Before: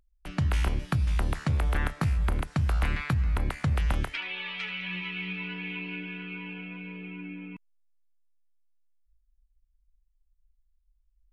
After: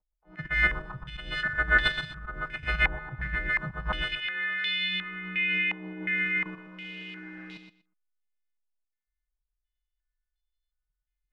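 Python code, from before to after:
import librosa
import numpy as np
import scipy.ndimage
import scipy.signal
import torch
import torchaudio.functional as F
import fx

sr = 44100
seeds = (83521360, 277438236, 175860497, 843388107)

p1 = fx.freq_snap(x, sr, grid_st=3)
p2 = fx.leveller(p1, sr, passes=1)
p3 = fx.low_shelf(p2, sr, hz=74.0, db=-3.5)
p4 = fx.quant_dither(p3, sr, seeds[0], bits=6, dither='none')
p5 = p3 + (p4 * librosa.db_to_amplitude(-5.0))
p6 = fx.level_steps(p5, sr, step_db=10)
p7 = fx.auto_swell(p6, sr, attack_ms=167.0)
p8 = p7 + 0.82 * np.pad(p7, (int(6.2 * sr / 1000.0), 0))[:len(p7)]
p9 = fx.echo_feedback(p8, sr, ms=121, feedback_pct=17, wet_db=-8.0)
p10 = fx.filter_held_lowpass(p9, sr, hz=2.8, low_hz=870.0, high_hz=3700.0)
y = p10 * librosa.db_to_amplitude(-6.5)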